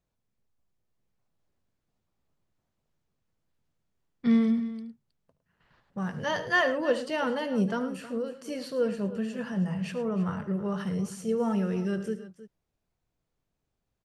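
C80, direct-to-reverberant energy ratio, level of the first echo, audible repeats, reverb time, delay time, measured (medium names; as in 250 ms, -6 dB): no reverb, no reverb, -16.5 dB, 3, no reverb, 73 ms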